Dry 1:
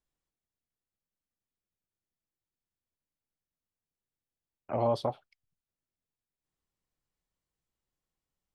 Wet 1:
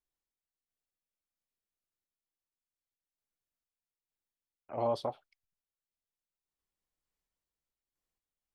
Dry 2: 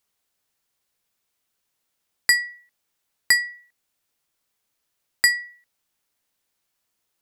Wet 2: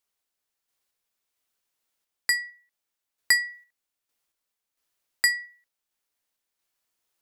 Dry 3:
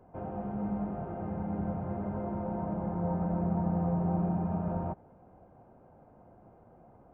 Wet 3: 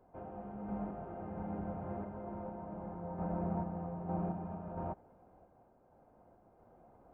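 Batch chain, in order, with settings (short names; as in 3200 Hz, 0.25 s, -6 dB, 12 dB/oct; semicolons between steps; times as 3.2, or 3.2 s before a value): bell 130 Hz -6 dB 1.6 oct; random-step tremolo 4.4 Hz; gain -2 dB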